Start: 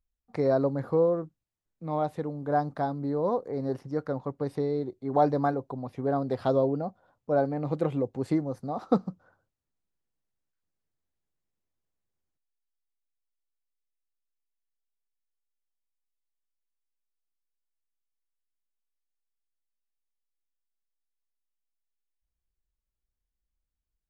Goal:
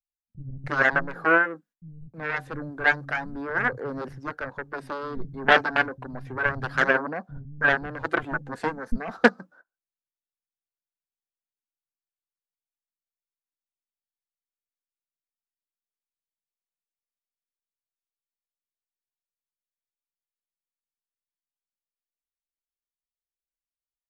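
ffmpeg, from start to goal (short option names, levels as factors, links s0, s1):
-filter_complex "[0:a]agate=range=0.0447:threshold=0.002:ratio=16:detection=peak,aeval=exprs='0.335*(cos(1*acos(clip(val(0)/0.335,-1,1)))-cos(1*PI/2))+0.15*(cos(2*acos(clip(val(0)/0.335,-1,1)))-cos(2*PI/2))+0.0299*(cos(3*acos(clip(val(0)/0.335,-1,1)))-cos(3*PI/2))+0.0841*(cos(5*acos(clip(val(0)/0.335,-1,1)))-cos(5*PI/2))+0.133*(cos(7*acos(clip(val(0)/0.335,-1,1)))-cos(7*PI/2))':c=same,aphaser=in_gain=1:out_gain=1:delay=4.6:decay=0.32:speed=0.29:type=sinusoidal,equalizer=f=1600:t=o:w=0.43:g=12.5,acrossover=split=180[s0][s1];[s1]adelay=320[s2];[s0][s2]amix=inputs=2:normalize=0,volume=1.33"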